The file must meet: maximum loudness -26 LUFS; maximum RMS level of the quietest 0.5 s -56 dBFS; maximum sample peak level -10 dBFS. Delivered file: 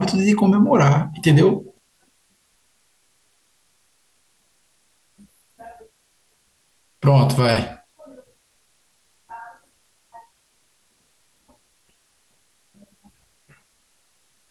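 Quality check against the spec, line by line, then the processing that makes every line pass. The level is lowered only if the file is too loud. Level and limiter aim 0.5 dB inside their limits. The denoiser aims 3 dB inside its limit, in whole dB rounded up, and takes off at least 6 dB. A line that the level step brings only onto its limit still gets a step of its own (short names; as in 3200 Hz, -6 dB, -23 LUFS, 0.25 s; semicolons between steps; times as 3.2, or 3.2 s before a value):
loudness -17.0 LUFS: fail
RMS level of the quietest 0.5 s -63 dBFS: OK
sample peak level -5.5 dBFS: fail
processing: gain -9.5 dB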